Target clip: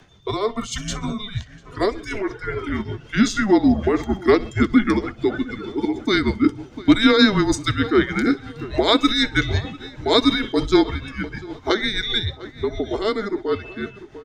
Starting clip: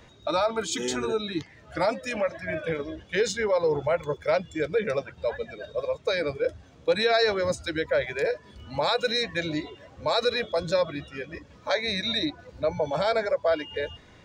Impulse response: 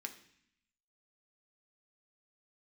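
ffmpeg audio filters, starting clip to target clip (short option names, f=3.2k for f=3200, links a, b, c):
-filter_complex "[0:a]dynaudnorm=f=410:g=13:m=7dB,asplit=2[a][b];[b]adelay=699,lowpass=f=2.7k:p=1,volume=-17dB,asplit=2[c][d];[d]adelay=699,lowpass=f=2.7k:p=1,volume=0.38,asplit=2[e][f];[f]adelay=699,lowpass=f=2.7k:p=1,volume=0.38[g];[c][e][g]amix=inputs=3:normalize=0[h];[a][h]amix=inputs=2:normalize=0,afreqshift=-210,asplit=2[i][j];[j]aecho=0:1:64|128|192:0.119|0.0428|0.0154[k];[i][k]amix=inputs=2:normalize=0,tremolo=f=6.5:d=0.54,volume=3.5dB"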